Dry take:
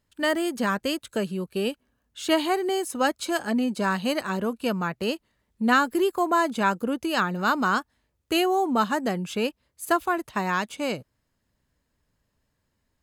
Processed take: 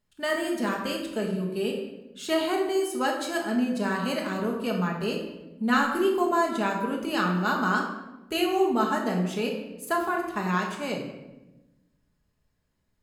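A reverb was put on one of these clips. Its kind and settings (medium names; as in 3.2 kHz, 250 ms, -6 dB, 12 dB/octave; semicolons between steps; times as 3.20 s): simulated room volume 460 m³, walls mixed, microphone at 1.4 m; trim -5.5 dB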